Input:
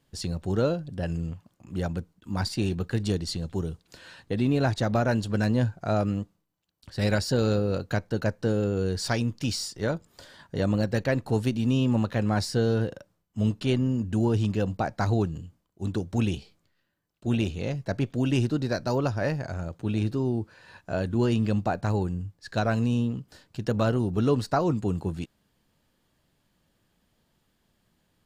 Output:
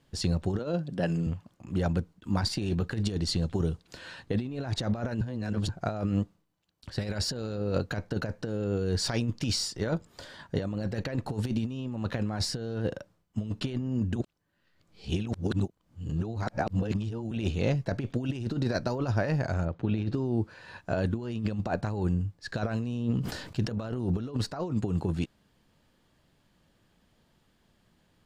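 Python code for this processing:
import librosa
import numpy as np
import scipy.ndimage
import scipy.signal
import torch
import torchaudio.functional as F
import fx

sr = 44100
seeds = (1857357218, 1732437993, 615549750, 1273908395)

y = fx.highpass(x, sr, hz=140.0, slope=24, at=(0.59, 1.27))
y = fx.lowpass(y, sr, hz=fx.line((19.64, 2600.0), (20.13, 5100.0)), slope=12, at=(19.64, 20.13), fade=0.02)
y = fx.sustainer(y, sr, db_per_s=55.0, at=(23.14, 24.31), fade=0.02)
y = fx.edit(y, sr, fx.reverse_span(start_s=5.21, length_s=0.48),
    fx.reverse_span(start_s=14.16, length_s=3.15), tone=tone)
y = fx.high_shelf(y, sr, hz=9400.0, db=-10.0)
y = fx.over_compress(y, sr, threshold_db=-28.0, ratio=-0.5)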